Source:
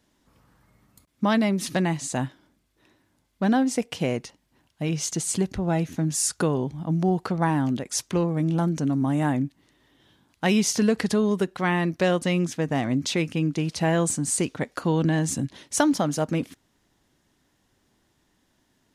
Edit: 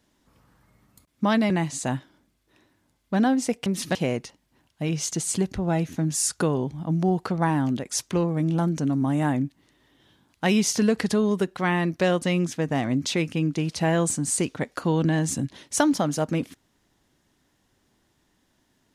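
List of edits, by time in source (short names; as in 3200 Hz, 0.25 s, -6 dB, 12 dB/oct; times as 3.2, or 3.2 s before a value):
1.5–1.79 move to 3.95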